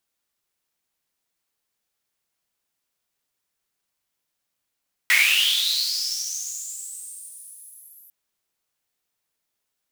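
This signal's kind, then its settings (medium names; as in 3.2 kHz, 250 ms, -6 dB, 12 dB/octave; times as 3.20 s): swept filtered noise pink, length 3.00 s highpass, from 1.9 kHz, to 12 kHz, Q 9.8, linear, gain ramp -31 dB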